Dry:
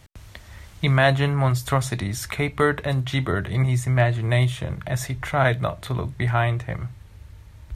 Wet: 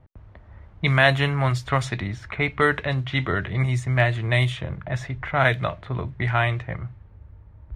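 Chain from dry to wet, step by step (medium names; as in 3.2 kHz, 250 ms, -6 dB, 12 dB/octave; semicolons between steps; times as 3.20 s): level-controlled noise filter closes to 950 Hz, open at -14.5 dBFS; dynamic bell 2.4 kHz, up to +7 dB, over -39 dBFS, Q 0.8; trim -2 dB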